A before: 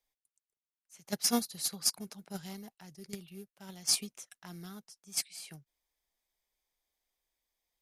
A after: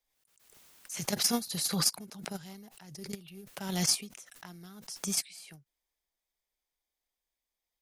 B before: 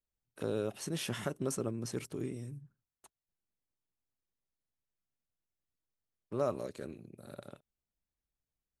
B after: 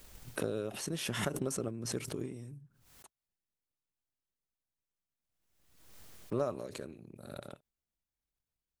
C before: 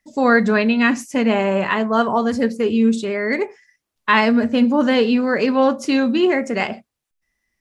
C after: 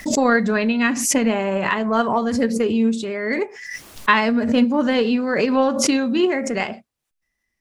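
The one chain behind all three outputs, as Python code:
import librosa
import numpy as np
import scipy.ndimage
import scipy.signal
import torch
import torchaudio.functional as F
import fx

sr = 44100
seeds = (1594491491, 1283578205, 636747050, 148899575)

y = fx.transient(x, sr, attack_db=6, sustain_db=2)
y = fx.pre_swell(y, sr, db_per_s=51.0)
y = F.gain(torch.from_numpy(y), -4.0).numpy()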